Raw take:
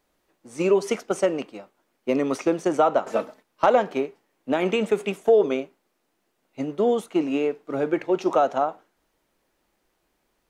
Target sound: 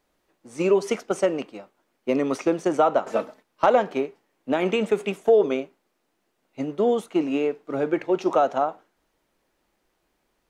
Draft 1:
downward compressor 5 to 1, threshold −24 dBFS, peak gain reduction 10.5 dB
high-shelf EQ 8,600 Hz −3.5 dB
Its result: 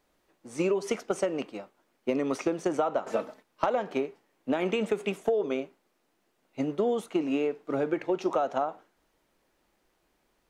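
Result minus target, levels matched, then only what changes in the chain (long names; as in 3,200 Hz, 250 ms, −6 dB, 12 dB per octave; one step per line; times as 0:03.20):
downward compressor: peak gain reduction +10.5 dB
remove: downward compressor 5 to 1, threshold −24 dBFS, peak gain reduction 10.5 dB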